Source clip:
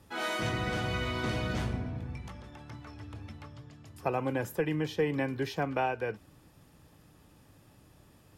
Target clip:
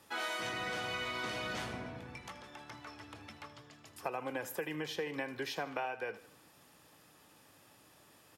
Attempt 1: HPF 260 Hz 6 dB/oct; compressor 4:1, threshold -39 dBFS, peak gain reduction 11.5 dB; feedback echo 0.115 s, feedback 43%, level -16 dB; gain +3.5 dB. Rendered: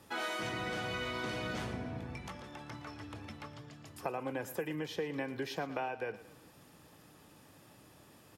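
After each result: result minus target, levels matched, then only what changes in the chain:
echo 36 ms late; 250 Hz band +3.5 dB
change: feedback echo 79 ms, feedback 43%, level -16 dB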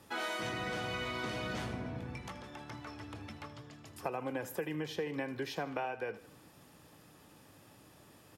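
250 Hz band +3.5 dB
change: HPF 740 Hz 6 dB/oct

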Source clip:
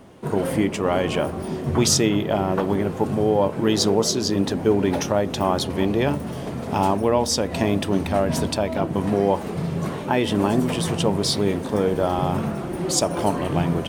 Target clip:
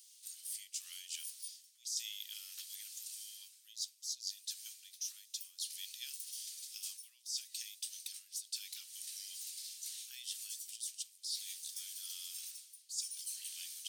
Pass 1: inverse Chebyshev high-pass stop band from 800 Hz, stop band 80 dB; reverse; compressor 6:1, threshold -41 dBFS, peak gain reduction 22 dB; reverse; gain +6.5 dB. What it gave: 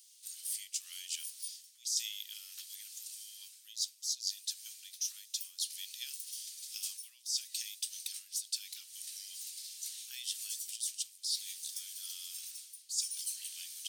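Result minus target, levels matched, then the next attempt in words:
compressor: peak gain reduction -5.5 dB
inverse Chebyshev high-pass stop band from 800 Hz, stop band 80 dB; reverse; compressor 6:1, threshold -47.5 dBFS, peak gain reduction 27.5 dB; reverse; gain +6.5 dB

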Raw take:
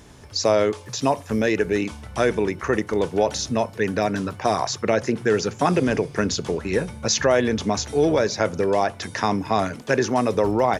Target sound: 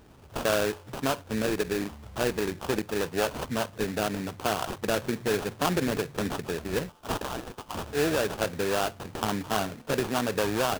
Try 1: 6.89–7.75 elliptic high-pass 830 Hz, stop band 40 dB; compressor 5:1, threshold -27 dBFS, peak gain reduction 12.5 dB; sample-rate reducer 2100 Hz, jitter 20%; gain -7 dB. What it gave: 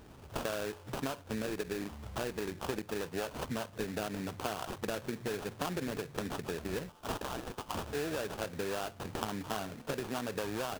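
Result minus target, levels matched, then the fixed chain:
compressor: peak gain reduction +12.5 dB
6.89–7.75 elliptic high-pass 830 Hz, stop band 40 dB; sample-rate reducer 2100 Hz, jitter 20%; gain -7 dB

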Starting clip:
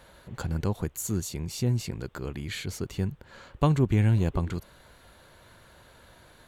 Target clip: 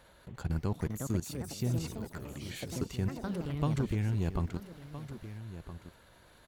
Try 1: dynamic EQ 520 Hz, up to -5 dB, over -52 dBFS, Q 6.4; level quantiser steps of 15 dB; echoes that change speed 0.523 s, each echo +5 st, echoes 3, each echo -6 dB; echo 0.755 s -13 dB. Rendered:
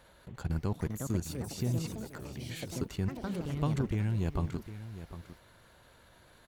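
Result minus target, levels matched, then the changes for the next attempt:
echo 0.561 s early
change: echo 1.316 s -13 dB

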